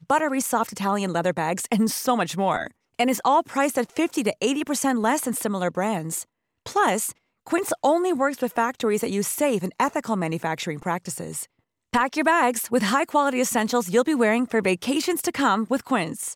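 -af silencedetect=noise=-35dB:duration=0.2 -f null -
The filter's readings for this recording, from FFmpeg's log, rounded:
silence_start: 2.67
silence_end: 2.99 | silence_duration: 0.32
silence_start: 6.23
silence_end: 6.66 | silence_duration: 0.44
silence_start: 7.11
silence_end: 7.47 | silence_duration: 0.35
silence_start: 11.44
silence_end: 11.93 | silence_duration: 0.49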